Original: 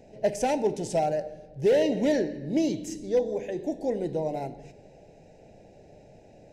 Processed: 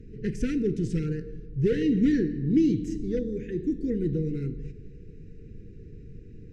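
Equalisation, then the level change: Chebyshev band-stop 470–1300 Hz, order 5; RIAA curve playback; dynamic bell 420 Hz, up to -7 dB, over -38 dBFS, Q 4.6; 0.0 dB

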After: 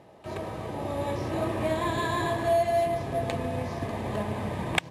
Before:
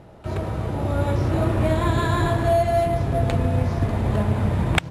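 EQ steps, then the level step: high-pass 340 Hz 6 dB/octave; Butterworth band-stop 1.4 kHz, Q 6.7; -3.0 dB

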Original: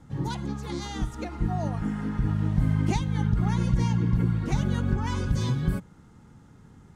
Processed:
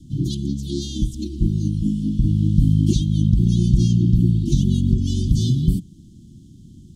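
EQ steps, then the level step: Chebyshev band-stop 350–3100 Hz, order 5; +8.5 dB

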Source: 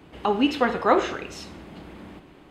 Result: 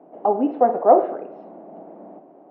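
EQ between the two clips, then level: high-pass 210 Hz 24 dB/octave; resonant low-pass 680 Hz, resonance Q 4.9; distance through air 120 m; -1.0 dB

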